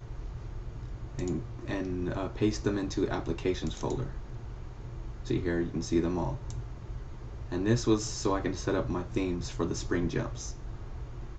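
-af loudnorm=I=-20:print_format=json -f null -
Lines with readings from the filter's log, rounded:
"input_i" : "-33.0",
"input_tp" : "-12.8",
"input_lra" : "2.6",
"input_thresh" : "-43.4",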